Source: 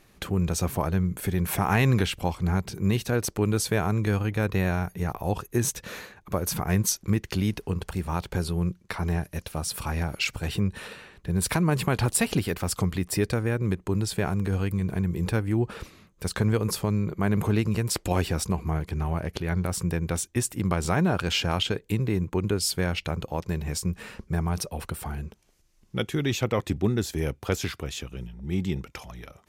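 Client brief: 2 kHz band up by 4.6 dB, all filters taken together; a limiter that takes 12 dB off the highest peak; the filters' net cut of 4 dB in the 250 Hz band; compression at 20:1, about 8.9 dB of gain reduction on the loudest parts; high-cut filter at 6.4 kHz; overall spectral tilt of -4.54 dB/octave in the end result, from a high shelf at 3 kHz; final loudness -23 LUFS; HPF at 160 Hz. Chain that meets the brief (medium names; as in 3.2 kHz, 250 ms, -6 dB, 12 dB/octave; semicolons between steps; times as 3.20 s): high-pass 160 Hz; low-pass 6.4 kHz; peaking EQ 250 Hz -4 dB; peaking EQ 2 kHz +8 dB; treble shelf 3 kHz -5 dB; compression 20:1, threshold -28 dBFS; trim +14 dB; peak limiter -9.5 dBFS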